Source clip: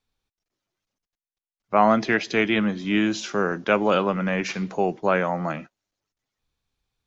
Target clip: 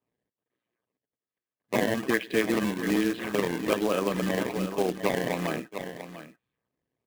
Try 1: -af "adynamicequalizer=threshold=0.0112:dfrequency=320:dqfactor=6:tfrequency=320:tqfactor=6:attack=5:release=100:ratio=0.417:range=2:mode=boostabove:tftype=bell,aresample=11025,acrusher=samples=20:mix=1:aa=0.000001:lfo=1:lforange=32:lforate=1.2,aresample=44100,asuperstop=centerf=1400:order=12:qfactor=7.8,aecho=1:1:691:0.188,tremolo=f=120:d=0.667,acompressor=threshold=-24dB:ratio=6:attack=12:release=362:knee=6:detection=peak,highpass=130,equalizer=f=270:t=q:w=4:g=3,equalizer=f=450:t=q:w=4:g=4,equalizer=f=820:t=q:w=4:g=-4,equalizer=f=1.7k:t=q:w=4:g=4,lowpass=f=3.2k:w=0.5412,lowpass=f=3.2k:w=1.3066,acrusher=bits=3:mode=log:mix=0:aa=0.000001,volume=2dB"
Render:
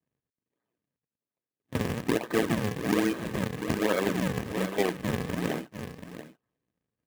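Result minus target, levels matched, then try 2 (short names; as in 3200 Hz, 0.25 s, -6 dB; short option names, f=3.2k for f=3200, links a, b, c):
decimation with a swept rate: distortion +11 dB
-af "adynamicequalizer=threshold=0.0112:dfrequency=320:dqfactor=6:tfrequency=320:tqfactor=6:attack=5:release=100:ratio=0.417:range=2:mode=boostabove:tftype=bell,aresample=11025,acrusher=samples=5:mix=1:aa=0.000001:lfo=1:lforange=8:lforate=1.2,aresample=44100,asuperstop=centerf=1400:order=12:qfactor=7.8,aecho=1:1:691:0.188,tremolo=f=120:d=0.667,acompressor=threshold=-24dB:ratio=6:attack=12:release=362:knee=6:detection=peak,highpass=130,equalizer=f=270:t=q:w=4:g=3,equalizer=f=450:t=q:w=4:g=4,equalizer=f=820:t=q:w=4:g=-4,equalizer=f=1.7k:t=q:w=4:g=4,lowpass=f=3.2k:w=0.5412,lowpass=f=3.2k:w=1.3066,acrusher=bits=3:mode=log:mix=0:aa=0.000001,volume=2dB"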